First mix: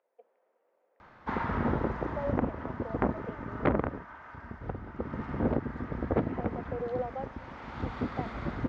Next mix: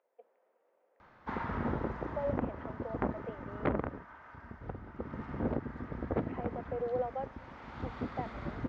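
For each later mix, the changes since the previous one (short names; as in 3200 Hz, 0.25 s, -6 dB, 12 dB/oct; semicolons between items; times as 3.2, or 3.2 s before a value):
background -5.0 dB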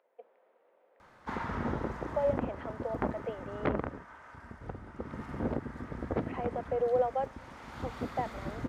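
speech +5.5 dB; master: remove air absorption 180 m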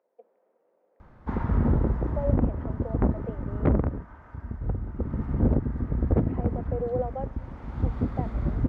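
speech -5.5 dB; master: add tilt -4.5 dB/oct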